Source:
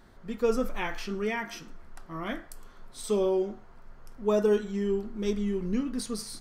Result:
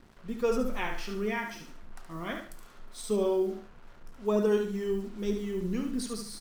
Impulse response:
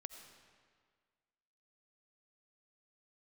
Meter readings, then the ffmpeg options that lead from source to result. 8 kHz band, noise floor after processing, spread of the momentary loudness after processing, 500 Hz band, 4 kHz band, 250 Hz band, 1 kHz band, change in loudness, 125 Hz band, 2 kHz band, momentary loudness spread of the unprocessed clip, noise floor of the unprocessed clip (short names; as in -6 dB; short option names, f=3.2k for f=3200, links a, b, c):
-1.5 dB, -52 dBFS, 16 LU, -1.5 dB, -1.5 dB, -1.5 dB, -1.0 dB, -1.5 dB, -1.0 dB, -0.5 dB, 15 LU, -51 dBFS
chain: -filter_complex "[0:a]acrossover=split=440[a][b];[a]aeval=exprs='val(0)*(1-0.5/2+0.5/2*cos(2*PI*3.2*n/s))':c=same[c];[b]aeval=exprs='val(0)*(1-0.5/2-0.5/2*cos(2*PI*3.2*n/s))':c=same[d];[c][d]amix=inputs=2:normalize=0,acrusher=bits=8:mix=0:aa=0.5,aecho=1:1:72|144|216:0.447|0.125|0.035"